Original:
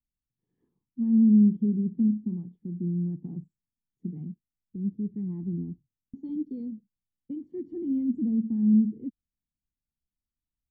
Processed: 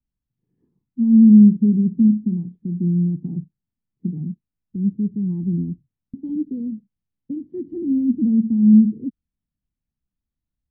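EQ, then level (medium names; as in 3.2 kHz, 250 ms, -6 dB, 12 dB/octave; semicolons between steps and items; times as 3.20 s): distance through air 200 m; bass shelf 140 Hz +6.5 dB; peaking EQ 190 Hz +7.5 dB 2.9 oct; 0.0 dB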